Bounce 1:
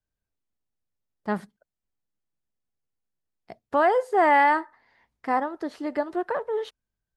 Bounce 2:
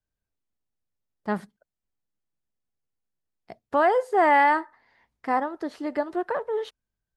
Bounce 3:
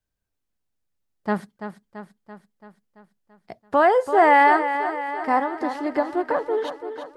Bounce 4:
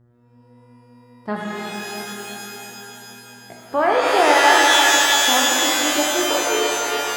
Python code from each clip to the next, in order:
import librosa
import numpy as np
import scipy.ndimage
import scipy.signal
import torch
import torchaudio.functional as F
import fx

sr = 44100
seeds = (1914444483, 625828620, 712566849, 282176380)

y1 = x
y2 = fx.echo_feedback(y1, sr, ms=336, feedback_pct=60, wet_db=-10)
y2 = y2 * 10.0 ** (3.5 / 20.0)
y3 = scipy.signal.sosfilt(scipy.signal.butter(2, 44.0, 'highpass', fs=sr, output='sos'), y2)
y3 = fx.dmg_buzz(y3, sr, base_hz=120.0, harmonics=16, level_db=-53.0, tilt_db=-9, odd_only=False)
y3 = fx.rev_shimmer(y3, sr, seeds[0], rt60_s=3.1, semitones=12, shimmer_db=-2, drr_db=-2.0)
y3 = y3 * 10.0 ** (-3.0 / 20.0)